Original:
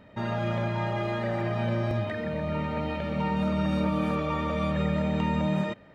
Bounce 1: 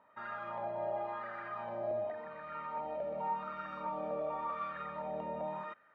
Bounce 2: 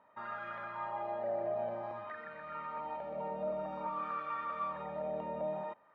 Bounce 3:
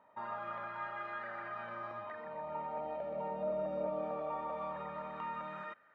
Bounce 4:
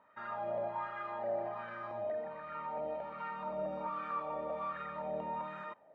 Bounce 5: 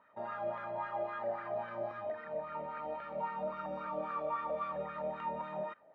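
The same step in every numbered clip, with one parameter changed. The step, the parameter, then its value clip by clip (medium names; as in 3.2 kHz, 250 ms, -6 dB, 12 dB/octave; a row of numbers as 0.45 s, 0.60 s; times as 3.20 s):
wah-wah, rate: 0.9 Hz, 0.52 Hz, 0.21 Hz, 1.3 Hz, 3.7 Hz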